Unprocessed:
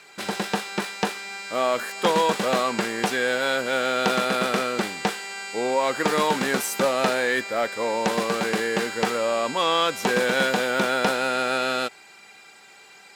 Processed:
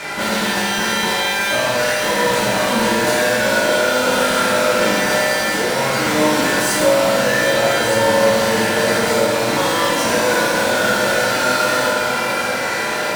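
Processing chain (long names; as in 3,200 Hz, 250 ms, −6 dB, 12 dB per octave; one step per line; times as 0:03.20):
low-pass that shuts in the quiet parts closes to 2,200 Hz, open at −17.5 dBFS
downward compressor, threshold −32 dBFS, peak gain reduction 15 dB
fuzz pedal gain 51 dB, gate −55 dBFS
delay that swaps between a low-pass and a high-pass 610 ms, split 1,400 Hz, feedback 81%, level −6 dB
convolution reverb RT60 1.8 s, pre-delay 3 ms, DRR −8.5 dB
level −12 dB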